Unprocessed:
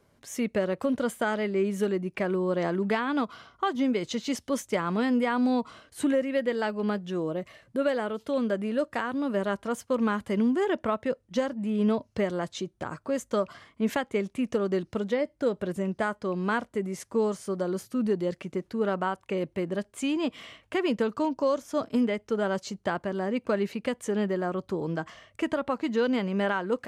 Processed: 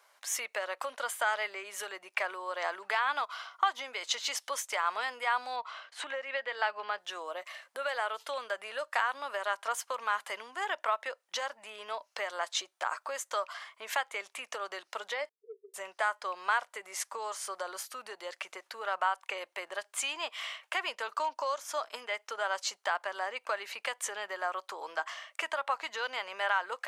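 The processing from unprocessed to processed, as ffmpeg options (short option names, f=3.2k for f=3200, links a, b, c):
-filter_complex "[0:a]asettb=1/sr,asplit=3[a][b][c];[a]atrim=end=5.564[d];[b]atrim=start=5.56:end=6.98,asetpts=PTS-STARTPTS,afade=t=in:d=0.004:c=qsin,afade=t=out:st=1.416:d=0.004:c=qsin,lowpass=4.2k[e];[c]atrim=start=6.976[f];[d][e]acrossfade=d=0.004:c1=hsin:c2=qsin[g];[g][f]acrossfade=d=0.004:c1=qsin:c2=hsin,asettb=1/sr,asplit=3[h][i][j];[h]atrim=end=15.294[k];[i]atrim=start=15.29:end=15.74,asetpts=PTS-STARTPTS,afade=t=in:d=0.004:c=qsin,afade=t=out:st=0.446:d=0.004:c=qsin,asuperpass=centerf=420:order=12:qfactor=5.9[l];[j]atrim=start=15.736[m];[k][l]acrossfade=d=0.004:c1=hsin:c2=qsin[n];[n][m]acrossfade=d=0.004:c1=qsin:c2=hsin,acompressor=threshold=-30dB:ratio=3,highpass=f=770:w=0.5412,highpass=f=770:w=1.3066,volume=7dB"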